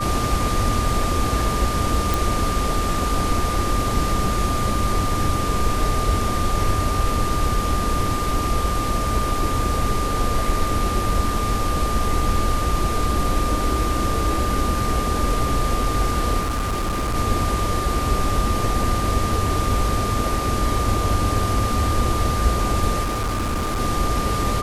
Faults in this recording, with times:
tone 1200 Hz -25 dBFS
2.14 pop
16.39–17.16 clipped -19.5 dBFS
23.03–23.81 clipped -20 dBFS

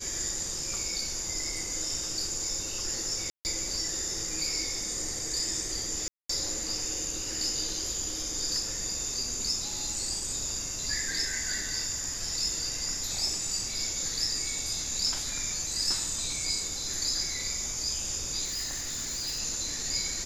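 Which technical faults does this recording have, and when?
3.3–3.45 gap 0.149 s
6.08–6.29 gap 0.214 s
18.44–19.4 clipped -30 dBFS

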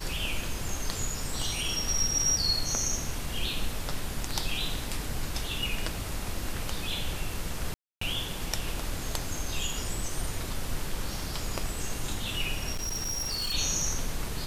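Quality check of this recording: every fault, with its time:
7.74–8.01 gap 0.274 s
12.73–13.55 clipped -28.5 dBFS

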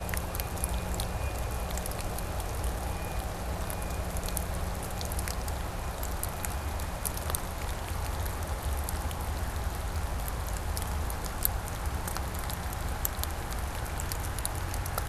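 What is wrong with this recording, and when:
9.95 gap 3.1 ms

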